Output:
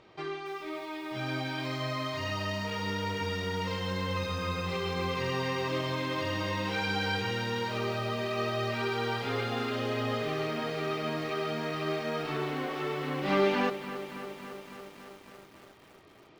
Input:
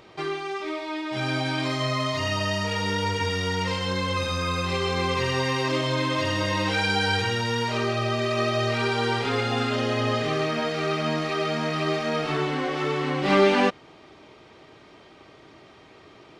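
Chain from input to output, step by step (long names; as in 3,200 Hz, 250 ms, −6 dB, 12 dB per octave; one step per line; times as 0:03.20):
high-frequency loss of the air 64 metres
feedback echo at a low word length 279 ms, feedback 80%, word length 7 bits, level −12 dB
level −7 dB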